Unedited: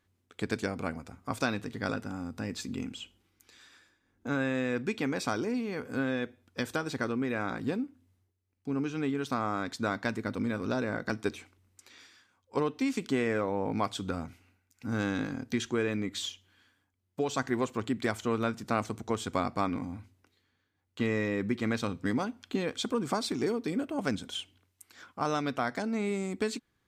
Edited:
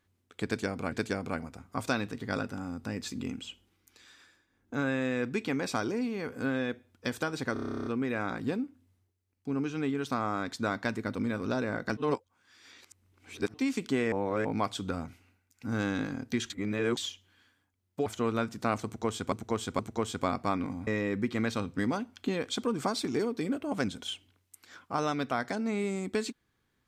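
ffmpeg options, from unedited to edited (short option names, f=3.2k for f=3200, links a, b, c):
-filter_complex "[0:a]asplit=23[a][b][c][d][e][f][g][h][i][j][k][l][m][n][o][p][q][r][s][t][u][v][w];[a]atrim=end=0.922[x];[b]atrim=start=0.448:end=7.092[y];[c]atrim=start=7.058:end=7.092[z];[d]atrim=start=7.058:end=7.092[aa];[e]atrim=start=7.058:end=7.092[ab];[f]atrim=start=7.058:end=7.092[ac];[g]atrim=start=7.058:end=7.092[ad];[h]atrim=start=7.058:end=7.092[ae];[i]atrim=start=7.058:end=7.092[af];[j]atrim=start=7.058:end=7.092[ag];[k]atrim=start=7.058:end=7.092[ah];[l]atrim=start=7.058:end=7.092[ai];[m]atrim=start=7.058:end=11.172[aj];[n]atrim=start=11.168:end=12.742,asetpts=PTS-STARTPTS,areverse[ak];[o]atrim=start=12.738:end=13.322[al];[p]atrim=start=13.318:end=13.652,asetpts=PTS-STARTPTS,areverse[am];[q]atrim=start=13.648:end=15.702[an];[r]atrim=start=15.698:end=16.172,asetpts=PTS-STARTPTS,areverse[ao];[s]atrim=start=16.168:end=17.262[ap];[t]atrim=start=18.118:end=19.382[aq];[u]atrim=start=18.908:end=19.382[ar];[v]atrim=start=18.908:end=19.992[as];[w]atrim=start=21.138[at];[x][y]acrossfade=d=0.004:c1=hsin:c2=hsin[au];[au][z]acrossfade=d=0.004:c1=hsin:c2=hsin[av];[av][aa]acrossfade=d=0.004:c1=hsin:c2=hsin[aw];[aw][ab]acrossfade=d=0.004:c1=hsin:c2=hsin[ax];[ax][ac]acrossfade=d=0.004:c1=hsin:c2=hsin[ay];[ay][ad]acrossfade=d=0.004:c1=hsin:c2=hsin[az];[az][ae]acrossfade=d=0.004:c1=hsin:c2=hsin[ba];[ba][af]acrossfade=d=0.004:c1=hsin:c2=hsin[bb];[bb][ag]acrossfade=d=0.004:c1=hsin:c2=hsin[bc];[bc][ah]acrossfade=d=0.004:c1=hsin:c2=hsin[bd];[bd][ai]acrossfade=d=0.004:c1=hsin:c2=hsin[be];[be][aj]acrossfade=d=0.004:c1=hsin:c2=hsin[bf];[bf][ak]acrossfade=d=0.004:c1=hsin:c2=hsin[bg];[bg][al]acrossfade=d=0.004:c1=hsin:c2=hsin[bh];[bh][am]acrossfade=d=0.004:c1=hsin:c2=hsin[bi];[bi][an]acrossfade=d=0.004:c1=hsin:c2=hsin[bj];[bj][ao]acrossfade=d=0.004:c1=hsin:c2=hsin[bk];[bk][ap]acrossfade=d=0.004:c1=hsin:c2=hsin[bl];[bl][aq]acrossfade=d=0.004:c1=hsin:c2=hsin[bm];[bm][ar]acrossfade=d=0.004:c1=hsin:c2=hsin[bn];[bn][as]acrossfade=d=0.004:c1=hsin:c2=hsin[bo];[bo][at]acrossfade=d=0.004:c1=hsin:c2=hsin"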